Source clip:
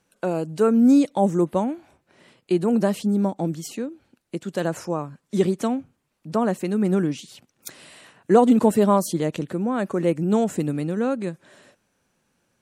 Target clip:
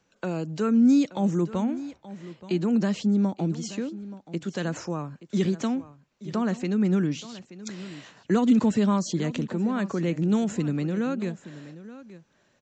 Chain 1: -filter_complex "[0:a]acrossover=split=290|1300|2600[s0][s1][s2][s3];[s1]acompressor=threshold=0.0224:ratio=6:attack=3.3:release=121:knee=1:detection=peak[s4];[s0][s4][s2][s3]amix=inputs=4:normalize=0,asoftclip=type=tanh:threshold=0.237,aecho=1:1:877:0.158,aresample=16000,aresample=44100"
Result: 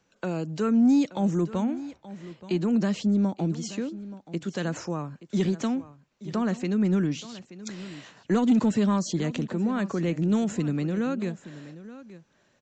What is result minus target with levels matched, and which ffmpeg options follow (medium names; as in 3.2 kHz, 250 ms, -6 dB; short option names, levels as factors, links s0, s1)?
saturation: distortion +21 dB
-filter_complex "[0:a]acrossover=split=290|1300|2600[s0][s1][s2][s3];[s1]acompressor=threshold=0.0224:ratio=6:attack=3.3:release=121:knee=1:detection=peak[s4];[s0][s4][s2][s3]amix=inputs=4:normalize=0,asoftclip=type=tanh:threshold=0.891,aecho=1:1:877:0.158,aresample=16000,aresample=44100"